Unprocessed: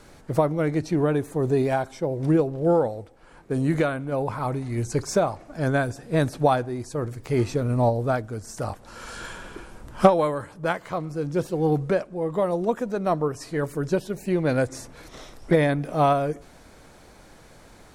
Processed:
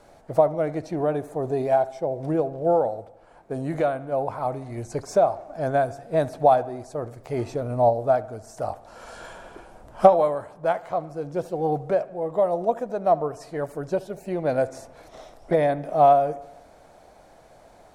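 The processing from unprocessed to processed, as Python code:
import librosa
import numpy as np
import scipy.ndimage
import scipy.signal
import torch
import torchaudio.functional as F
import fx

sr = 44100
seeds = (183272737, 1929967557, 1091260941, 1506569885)

p1 = fx.peak_eq(x, sr, hz=680.0, db=14.5, octaves=0.83)
p2 = p1 + fx.echo_wet_lowpass(p1, sr, ms=74, feedback_pct=58, hz=3300.0, wet_db=-19.0, dry=0)
y = p2 * 10.0 ** (-7.5 / 20.0)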